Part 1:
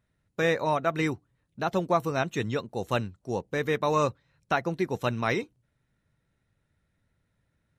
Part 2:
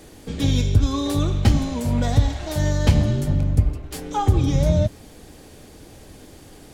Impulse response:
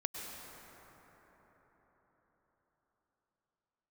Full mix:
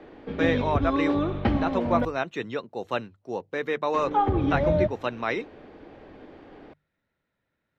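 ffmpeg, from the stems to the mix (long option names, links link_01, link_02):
-filter_complex "[0:a]volume=0dB[link_01];[1:a]lowpass=2000,volume=1.5dB,asplit=3[link_02][link_03][link_04];[link_02]atrim=end=2.05,asetpts=PTS-STARTPTS,afade=type=out:start_time=2.046:duration=0.004:curve=hsin[link_05];[link_03]atrim=start=2.05:end=3.94,asetpts=PTS-STARTPTS,volume=0[link_06];[link_04]atrim=start=3.94,asetpts=PTS-STARTPTS,afade=type=in:duration=0.004:curve=hsin[link_07];[link_05][link_06][link_07]concat=n=3:v=0:a=1[link_08];[link_01][link_08]amix=inputs=2:normalize=0,acrossover=split=230 4700:gain=0.251 1 0.126[link_09][link_10][link_11];[link_09][link_10][link_11]amix=inputs=3:normalize=0,bandreject=frequency=50:width_type=h:width=6,bandreject=frequency=100:width_type=h:width=6,bandreject=frequency=150:width_type=h:width=6"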